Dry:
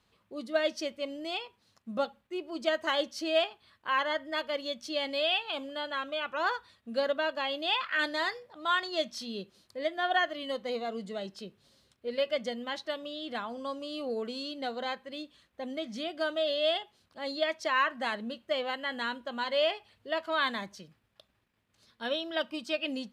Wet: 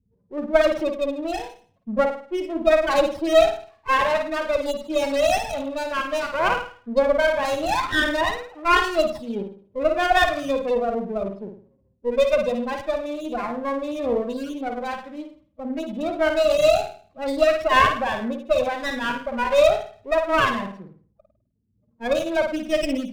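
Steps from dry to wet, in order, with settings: 14.42–15.83 dynamic EQ 600 Hz, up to -7 dB, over -50 dBFS, Q 1.9; low-pass opened by the level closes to 690 Hz, open at -28.5 dBFS; in parallel at -4.5 dB: crossover distortion -42 dBFS; on the sum: loudest bins only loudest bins 8; reverb, pre-delay 51 ms, DRR 4.5 dB; running maximum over 9 samples; gain +8 dB

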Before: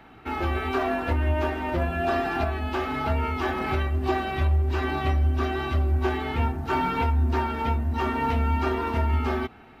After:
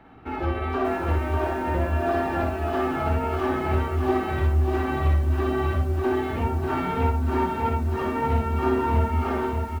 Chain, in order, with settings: high shelf 2100 Hz -11.5 dB; on a send: early reflections 50 ms -7.5 dB, 61 ms -5 dB; on the sum: lo-fi delay 0.59 s, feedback 35%, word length 8-bit, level -4.5 dB

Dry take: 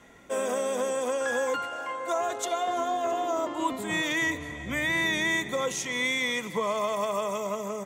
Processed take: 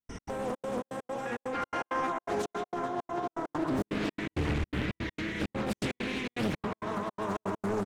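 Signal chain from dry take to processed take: whine 5700 Hz -51 dBFS; negative-ratio compressor -35 dBFS, ratio -1; harmoniser -12 st -14 dB, +3 st -18 dB, +7 st -8 dB; tilt -3 dB/oct; darkening echo 0.106 s, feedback 75%, low-pass 3700 Hz, level -9 dB; limiter -22 dBFS, peak gain reduction 7 dB; step gate ".x.xxx.xx" 165 bpm -60 dB; bell 590 Hz -8 dB 0.35 oct; Doppler distortion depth 0.81 ms; gain +1.5 dB

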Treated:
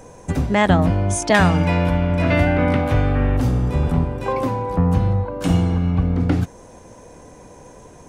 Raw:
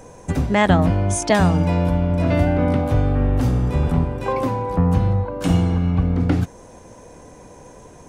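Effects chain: 1.34–3.37 bell 2100 Hz +9 dB 1.7 oct

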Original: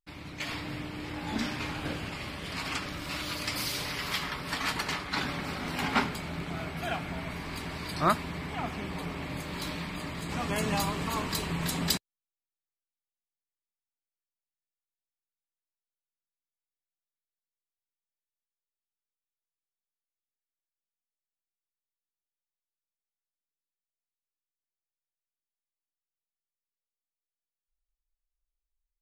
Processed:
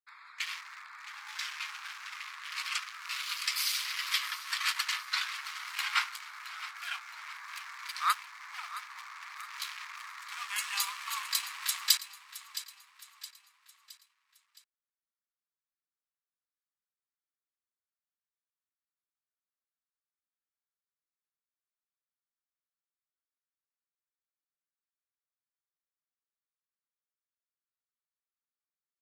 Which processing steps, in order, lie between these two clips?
Wiener smoothing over 15 samples; dynamic EQ 1400 Hz, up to -6 dB, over -46 dBFS, Q 0.94; steep high-pass 1100 Hz 48 dB/oct; feedback echo 0.667 s, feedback 46%, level -14 dB; gain +5 dB

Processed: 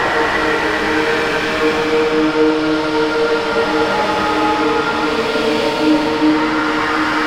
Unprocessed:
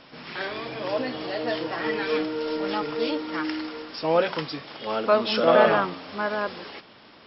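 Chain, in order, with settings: chorus voices 6, 0.61 Hz, delay 29 ms, depth 2.8 ms; overdrive pedal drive 35 dB, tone 1600 Hz, clips at -7 dBFS; Paulstretch 4.3×, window 0.50 s, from 1.78; gain +1 dB

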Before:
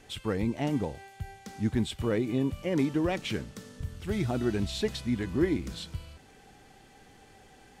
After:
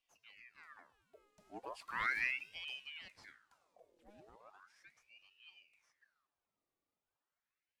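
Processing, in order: Doppler pass-by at 2.15, 19 m/s, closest 1.8 m; ring modulator with a swept carrier 1600 Hz, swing 75%, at 0.37 Hz; gain -2.5 dB

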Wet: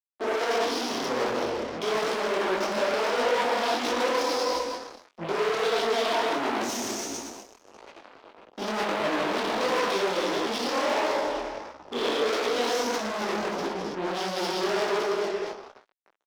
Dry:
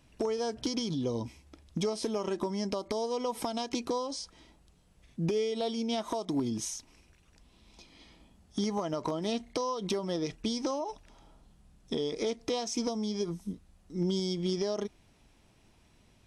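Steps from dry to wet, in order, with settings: Wiener smoothing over 25 samples; vocal rider within 4 dB 2 s; 8.65–9.63 low shelf 360 Hz +11 dB; Schroeder reverb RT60 1.6 s, combs from 29 ms, DRR -7.5 dB; transient shaper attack -7 dB, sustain +11 dB; fuzz box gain 39 dB, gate -47 dBFS; three-band isolator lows -22 dB, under 340 Hz, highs -13 dB, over 4800 Hz; detuned doubles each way 53 cents; gain -5 dB

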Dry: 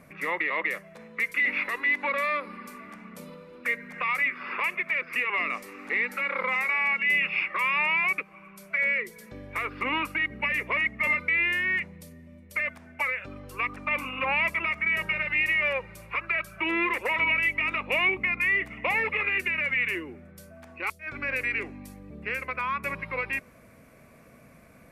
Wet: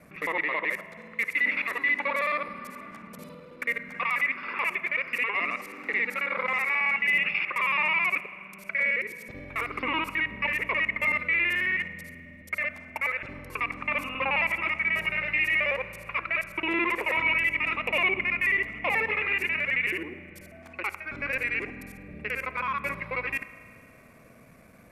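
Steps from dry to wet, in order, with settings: local time reversal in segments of 54 ms; spring tank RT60 2.3 s, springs 33 ms, chirp 35 ms, DRR 13.5 dB

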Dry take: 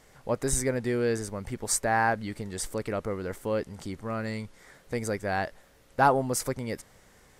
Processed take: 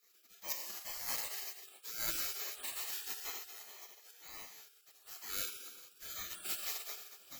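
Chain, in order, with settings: FFT order left unsorted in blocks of 16 samples; on a send: thinning echo 0.432 s, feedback 73%, high-pass 1000 Hz, level -16.5 dB; on the sum: dynamic EQ 120 Hz, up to +3 dB, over -46 dBFS, Q 0.92; fixed phaser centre 2300 Hz, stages 8; spectral noise reduction 8 dB; auto swell 0.524 s; harmonic tremolo 2.1 Hz, depth 70%, crossover 910 Hz; ripple EQ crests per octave 1.1, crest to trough 11 dB; non-linear reverb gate 0.45 s falling, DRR 0.5 dB; spectral gate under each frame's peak -30 dB weak; gain +14.5 dB

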